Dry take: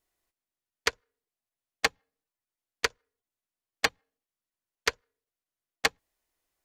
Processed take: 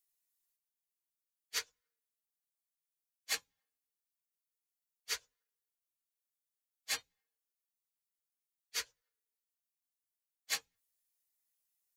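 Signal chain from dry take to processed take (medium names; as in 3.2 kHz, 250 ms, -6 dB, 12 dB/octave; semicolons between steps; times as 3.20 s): pre-emphasis filter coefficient 0.9; peak limiter -18.5 dBFS, peak gain reduction 3 dB; plain phase-vocoder stretch 1.8×; trim +1 dB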